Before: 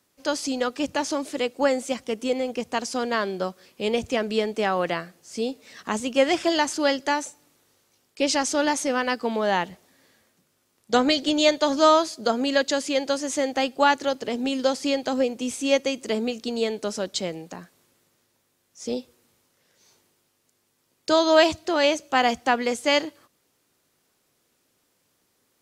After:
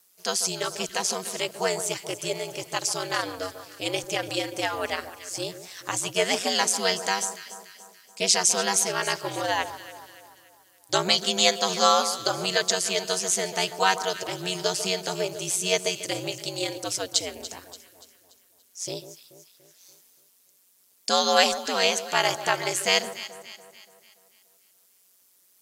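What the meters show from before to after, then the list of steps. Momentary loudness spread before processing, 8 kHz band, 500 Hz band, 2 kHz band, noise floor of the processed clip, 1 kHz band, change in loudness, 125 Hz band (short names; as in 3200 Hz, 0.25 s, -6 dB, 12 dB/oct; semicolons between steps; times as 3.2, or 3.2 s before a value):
11 LU, +8.0 dB, -5.0 dB, -0.5 dB, -62 dBFS, -2.0 dB, -1.0 dB, +3.5 dB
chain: RIAA curve recording; ring modulator 93 Hz; echo with dull and thin repeats by turns 0.144 s, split 1400 Hz, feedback 67%, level -11 dB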